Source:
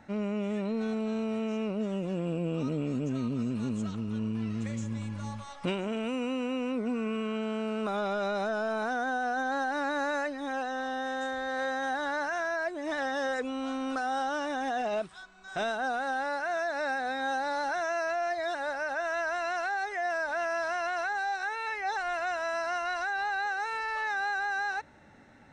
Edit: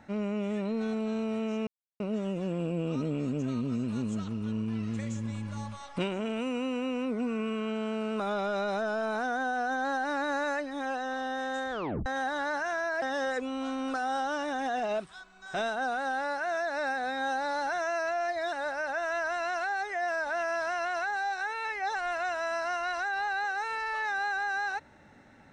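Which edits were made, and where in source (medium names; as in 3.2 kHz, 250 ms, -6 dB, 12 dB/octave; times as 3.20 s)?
1.67 s: insert silence 0.33 s
11.38 s: tape stop 0.35 s
12.69–13.04 s: delete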